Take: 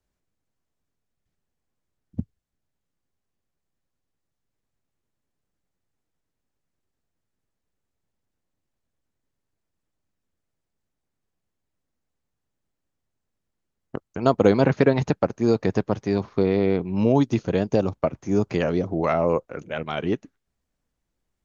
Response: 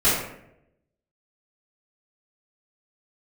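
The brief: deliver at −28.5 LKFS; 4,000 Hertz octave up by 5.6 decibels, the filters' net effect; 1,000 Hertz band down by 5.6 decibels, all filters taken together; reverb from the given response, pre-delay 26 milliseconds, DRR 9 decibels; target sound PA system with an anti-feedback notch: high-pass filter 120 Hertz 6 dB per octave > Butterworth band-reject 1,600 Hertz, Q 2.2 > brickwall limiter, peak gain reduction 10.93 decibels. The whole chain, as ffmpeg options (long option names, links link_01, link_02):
-filter_complex "[0:a]equalizer=frequency=1000:width_type=o:gain=-8,equalizer=frequency=4000:width_type=o:gain=7.5,asplit=2[link_01][link_02];[1:a]atrim=start_sample=2205,adelay=26[link_03];[link_02][link_03]afir=irnorm=-1:irlink=0,volume=-26.5dB[link_04];[link_01][link_04]amix=inputs=2:normalize=0,highpass=frequency=120:poles=1,asuperstop=centerf=1600:order=8:qfactor=2.2,volume=-1dB,alimiter=limit=-16.5dB:level=0:latency=1"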